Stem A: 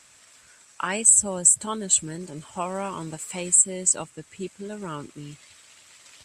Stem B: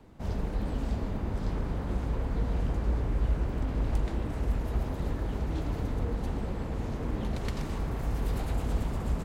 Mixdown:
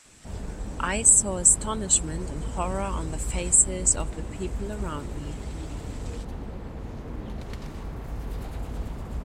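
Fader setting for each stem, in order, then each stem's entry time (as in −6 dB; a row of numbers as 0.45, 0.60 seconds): −0.5, −3.5 decibels; 0.00, 0.05 seconds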